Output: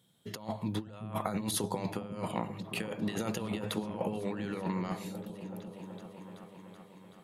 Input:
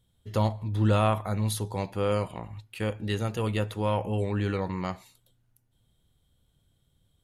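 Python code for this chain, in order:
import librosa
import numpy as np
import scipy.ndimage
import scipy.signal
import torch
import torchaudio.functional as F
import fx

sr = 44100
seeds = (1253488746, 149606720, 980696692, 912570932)

y = scipy.signal.sosfilt(scipy.signal.cheby1(3, 1.0, 160.0, 'highpass', fs=sr, output='sos'), x)
y = fx.over_compress(y, sr, threshold_db=-35.0, ratio=-0.5)
y = fx.echo_opening(y, sr, ms=379, hz=200, octaves=1, feedback_pct=70, wet_db=-6)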